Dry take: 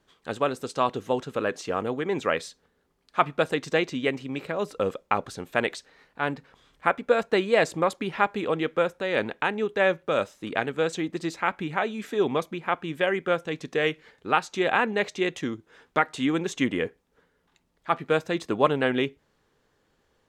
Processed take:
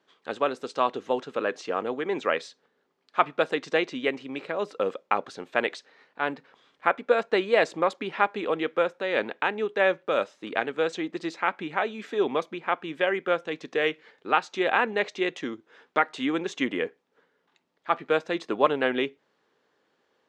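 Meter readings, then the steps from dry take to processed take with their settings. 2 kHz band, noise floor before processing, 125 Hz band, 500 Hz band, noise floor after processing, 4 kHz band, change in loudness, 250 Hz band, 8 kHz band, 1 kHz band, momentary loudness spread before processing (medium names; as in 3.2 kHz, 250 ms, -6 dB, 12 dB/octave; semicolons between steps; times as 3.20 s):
0.0 dB, -70 dBFS, -9.5 dB, -0.5 dB, -72 dBFS, -0.5 dB, -0.5 dB, -3.0 dB, no reading, 0.0 dB, 8 LU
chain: band-pass 270–5100 Hz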